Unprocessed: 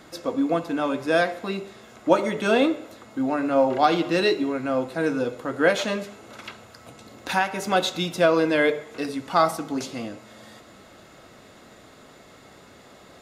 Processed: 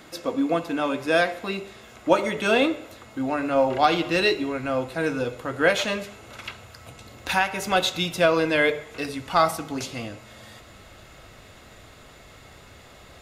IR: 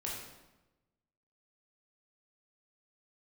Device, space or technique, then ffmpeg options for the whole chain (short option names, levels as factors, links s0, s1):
presence and air boost: -af "asubboost=boost=5.5:cutoff=92,equalizer=f=2600:t=o:w=0.84:g=4.5,highshelf=f=11000:g=6"